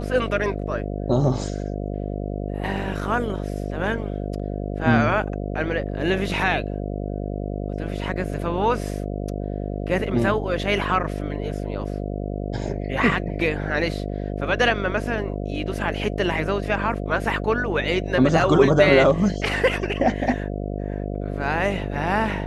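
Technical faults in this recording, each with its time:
buzz 50 Hz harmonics 14 -28 dBFS

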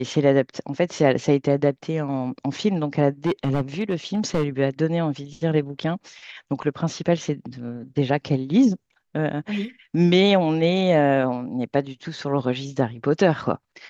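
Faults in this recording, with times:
3.25–4.44 clipped -16.5 dBFS

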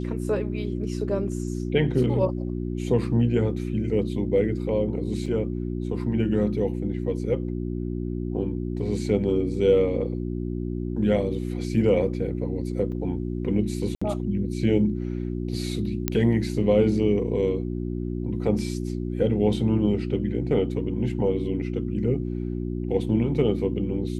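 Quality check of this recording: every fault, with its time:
hum 60 Hz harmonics 6 -29 dBFS
5.26 gap 4.1 ms
12.92–12.93 gap 5.4 ms
13.95–14.02 gap 65 ms
16.08 pop -8 dBFS

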